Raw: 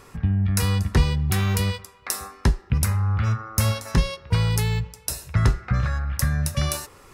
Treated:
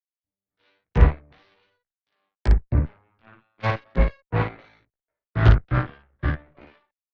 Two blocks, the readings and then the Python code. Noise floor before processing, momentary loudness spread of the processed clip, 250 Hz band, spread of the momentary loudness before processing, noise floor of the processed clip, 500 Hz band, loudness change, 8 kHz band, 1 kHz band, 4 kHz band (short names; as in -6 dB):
-50 dBFS, 14 LU, -3.5 dB, 6 LU, under -85 dBFS, +1.0 dB, 0.0 dB, under -30 dB, 0.0 dB, -12.5 dB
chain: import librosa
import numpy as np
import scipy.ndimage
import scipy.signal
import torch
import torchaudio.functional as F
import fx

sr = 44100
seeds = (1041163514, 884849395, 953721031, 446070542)

p1 = fx.noise_reduce_blind(x, sr, reduce_db=17)
p2 = fx.hpss(p1, sr, part='harmonic', gain_db=7)
p3 = fx.level_steps(p2, sr, step_db=17)
p4 = p2 + F.gain(torch.from_numpy(p3), 0.5).numpy()
p5 = fx.backlash(p4, sr, play_db=-21.5)
p6 = scipy.signal.sosfilt(scipy.signal.cheby1(6, 3, 2300.0, 'lowpass', fs=sr, output='sos'), p5)
p7 = fx.cheby_harmonics(p6, sr, harmonics=(3, 5, 6, 7), levels_db=(-17, -23, -23, -16), full_scale_db=-2.5)
p8 = p7 + fx.room_early_taps(p7, sr, ms=(17, 56), db=(-3.5, -3.5), dry=0)
p9 = fx.band_widen(p8, sr, depth_pct=100)
y = F.gain(torch.from_numpy(p9), -9.0).numpy()